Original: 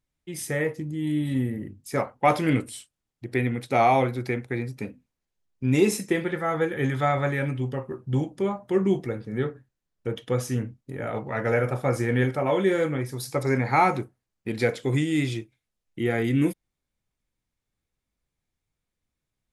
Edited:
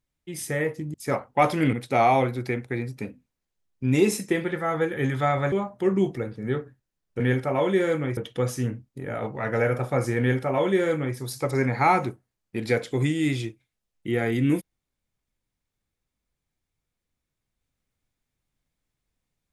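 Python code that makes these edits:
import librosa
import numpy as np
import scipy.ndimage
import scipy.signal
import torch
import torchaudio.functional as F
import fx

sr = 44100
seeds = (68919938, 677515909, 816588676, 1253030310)

y = fx.edit(x, sr, fx.cut(start_s=0.94, length_s=0.86),
    fx.cut(start_s=2.59, length_s=0.94),
    fx.cut(start_s=7.32, length_s=1.09),
    fx.duplicate(start_s=12.11, length_s=0.97, to_s=10.09), tone=tone)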